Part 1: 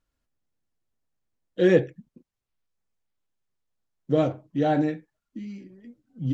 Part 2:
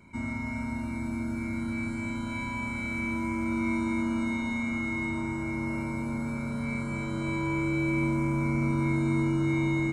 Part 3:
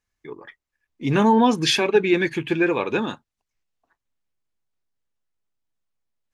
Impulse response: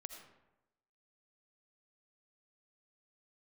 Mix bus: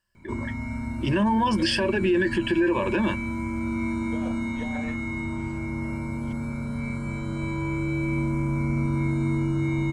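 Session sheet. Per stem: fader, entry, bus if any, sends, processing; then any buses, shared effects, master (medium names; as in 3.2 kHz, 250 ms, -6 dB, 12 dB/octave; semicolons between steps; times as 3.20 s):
-7.5 dB, 0.00 s, no send, high-pass 590 Hz 24 dB/octave; compressor with a negative ratio -32 dBFS, ratio -1
-1.5 dB, 0.15 s, no send, bass shelf 140 Hz +9.5 dB
0.0 dB, 0.00 s, no send, peak limiter -13 dBFS, peak gain reduction 7 dB; rippled EQ curve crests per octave 1.3, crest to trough 17 dB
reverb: none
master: peak limiter -15 dBFS, peak gain reduction 9 dB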